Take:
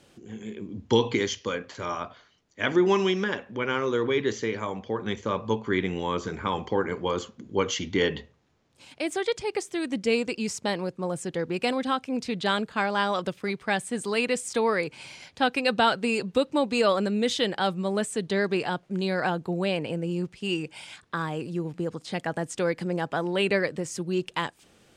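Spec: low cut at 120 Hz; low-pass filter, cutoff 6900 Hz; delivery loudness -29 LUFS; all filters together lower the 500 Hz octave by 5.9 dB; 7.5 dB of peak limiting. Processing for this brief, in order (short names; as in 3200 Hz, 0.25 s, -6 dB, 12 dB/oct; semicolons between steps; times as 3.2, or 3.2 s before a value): HPF 120 Hz; LPF 6900 Hz; bell 500 Hz -7.5 dB; gain +2.5 dB; limiter -15.5 dBFS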